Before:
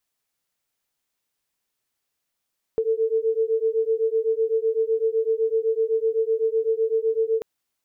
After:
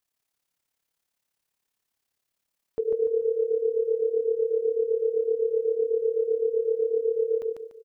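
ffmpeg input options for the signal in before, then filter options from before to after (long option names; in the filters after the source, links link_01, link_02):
-f lavfi -i "aevalsrc='0.075*(sin(2*PI*443*t)+sin(2*PI*450.9*t))':duration=4.64:sample_rate=44100"
-filter_complex "[0:a]tremolo=f=35:d=0.71,asplit=2[link_01][link_02];[link_02]aecho=0:1:146|292|438|584:0.668|0.227|0.0773|0.0263[link_03];[link_01][link_03]amix=inputs=2:normalize=0"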